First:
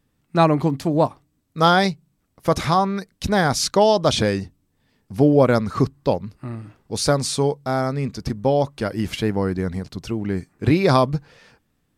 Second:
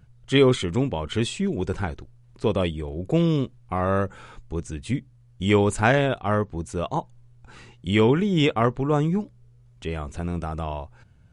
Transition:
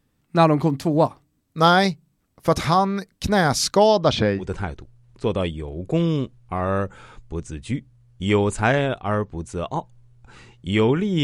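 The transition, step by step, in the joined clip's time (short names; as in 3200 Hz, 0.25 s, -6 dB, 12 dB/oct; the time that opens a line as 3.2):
first
3.87–4.52 LPF 7400 Hz -> 1600 Hz
4.42 switch to second from 1.62 s, crossfade 0.20 s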